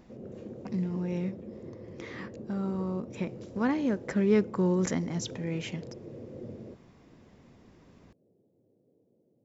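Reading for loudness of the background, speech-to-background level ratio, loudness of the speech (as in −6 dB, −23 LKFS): −45.0 LKFS, 14.0 dB, −31.0 LKFS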